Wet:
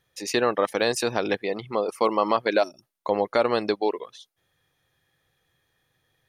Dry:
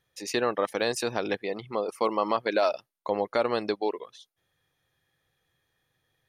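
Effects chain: spectral gain 2.63–2.83, 400–5400 Hz -27 dB; gain +4 dB

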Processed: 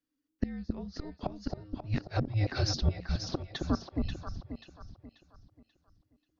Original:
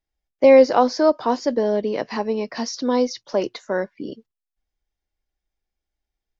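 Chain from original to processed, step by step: flipped gate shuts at -13 dBFS, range -26 dB; echo with dull and thin repeats by turns 0.268 s, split 940 Hz, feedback 59%, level -2.5 dB; frequency shift -320 Hz; gain -3.5 dB

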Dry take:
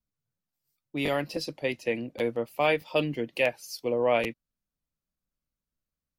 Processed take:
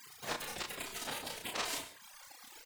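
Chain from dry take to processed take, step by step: zero-crossing step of -27.5 dBFS; compressor 6:1, threshold -32 dBFS, peak gain reduction 13.5 dB; tilt +3 dB/oct; spectral gate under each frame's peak -30 dB weak; bell 250 Hz +7.5 dB 2.6 oct; treble ducked by the level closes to 2700 Hz, closed at -49.5 dBFS; on a send: echo 77 ms -3.5 dB; on the sum: wide varispeed 2.33×; non-linear reverb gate 0.16 s flat, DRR 10 dB; mismatched tape noise reduction encoder only; gain +17.5 dB

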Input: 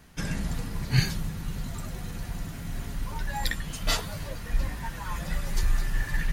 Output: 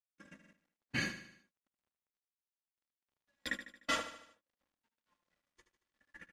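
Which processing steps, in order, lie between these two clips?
HPF 220 Hz 12 dB/oct; notch 830 Hz, Q 5; gate -31 dBFS, range -47 dB; bell 4400 Hz -9 dB 0.65 oct; comb 3.6 ms, depth 81%; in parallel at +2 dB: compressor, threshold -44 dBFS, peak gain reduction 19 dB; on the sum: requantised 12-bit, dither none; air absorption 78 m; on a send: feedback echo 75 ms, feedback 50%, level -11 dB; on the sum: stuck buffer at 0.39, samples 2048, times 2; gain -5.5 dB

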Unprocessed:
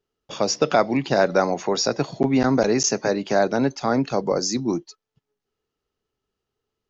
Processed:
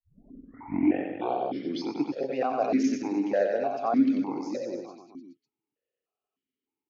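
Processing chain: tape start at the beginning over 1.97 s; reverse bouncing-ball echo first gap 90 ms, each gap 1.1×, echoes 5; vowel sequencer 3.3 Hz; gain +2 dB

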